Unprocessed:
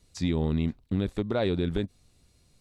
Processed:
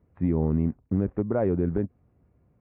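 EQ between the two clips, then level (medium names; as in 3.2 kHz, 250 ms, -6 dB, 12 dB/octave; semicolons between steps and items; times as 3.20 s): Gaussian low-pass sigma 5.9 samples; high-pass 66 Hz; +3.0 dB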